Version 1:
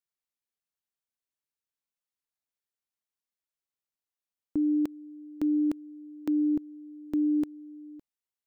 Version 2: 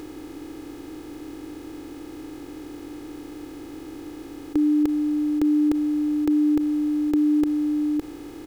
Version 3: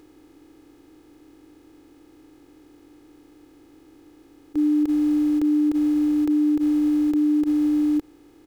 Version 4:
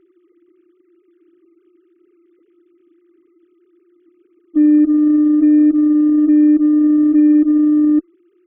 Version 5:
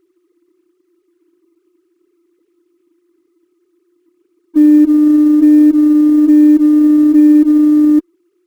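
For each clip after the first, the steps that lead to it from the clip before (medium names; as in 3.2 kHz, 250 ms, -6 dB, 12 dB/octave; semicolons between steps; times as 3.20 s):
spectral levelling over time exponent 0.2; comb 2.4 ms, depth 72%; trim +5 dB
peak limiter -20 dBFS, peak gain reduction 7.5 dB; upward expansion 2.5:1, over -35 dBFS; trim +4.5 dB
formants replaced by sine waves; Chebyshev shaper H 2 -31 dB, 8 -37 dB, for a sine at -13.5 dBFS; trim +8.5 dB
companding laws mixed up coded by A; trim +4 dB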